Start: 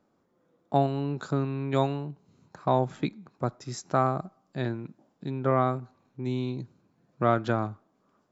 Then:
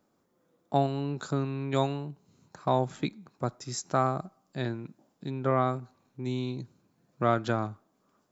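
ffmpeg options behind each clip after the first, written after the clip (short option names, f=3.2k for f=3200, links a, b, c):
-af "highshelf=f=4.9k:g=10.5,volume=-2dB"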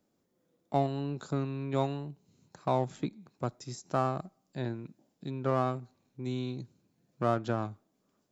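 -filter_complex "[0:a]acrossover=split=1400[a][b];[a]adynamicsmooth=sensitivity=6.5:basefreq=1k[c];[b]alimiter=level_in=10dB:limit=-24dB:level=0:latency=1:release=167,volume=-10dB[d];[c][d]amix=inputs=2:normalize=0,volume=-2.5dB"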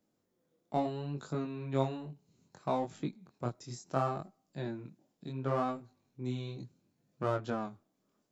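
-af "flanger=delay=19:depth=6.7:speed=0.69"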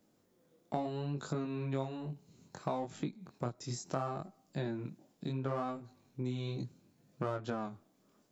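-af "acompressor=threshold=-42dB:ratio=4,volume=7.5dB"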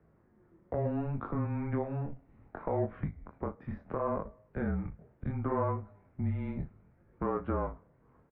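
-filter_complex "[0:a]alimiter=level_in=3dB:limit=-24dB:level=0:latency=1:release=136,volume=-3dB,highpass=f=210:t=q:w=0.5412,highpass=f=210:t=q:w=1.307,lowpass=f=2.1k:t=q:w=0.5176,lowpass=f=2.1k:t=q:w=0.7071,lowpass=f=2.1k:t=q:w=1.932,afreqshift=-150,asplit=2[a][b];[b]adelay=38,volume=-13dB[c];[a][c]amix=inputs=2:normalize=0,volume=7.5dB"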